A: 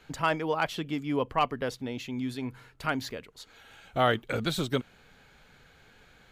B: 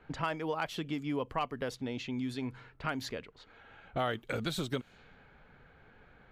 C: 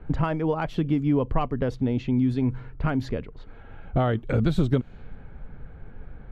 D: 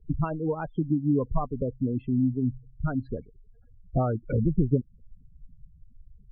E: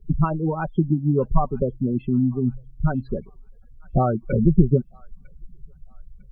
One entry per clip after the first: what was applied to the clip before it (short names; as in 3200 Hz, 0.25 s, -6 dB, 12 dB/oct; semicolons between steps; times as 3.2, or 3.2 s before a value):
low-pass opened by the level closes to 1600 Hz, open at -27.5 dBFS; compressor 2.5:1, threshold -33 dBFS, peak gain reduction 9.5 dB
tilt -4 dB/oct; gain +5 dB
spectral gate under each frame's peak -15 dB strong; upward expander 1.5:1, over -39 dBFS
comb 5.3 ms, depth 54%; thin delay 0.95 s, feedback 31%, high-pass 1500 Hz, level -20 dB; gain +5.5 dB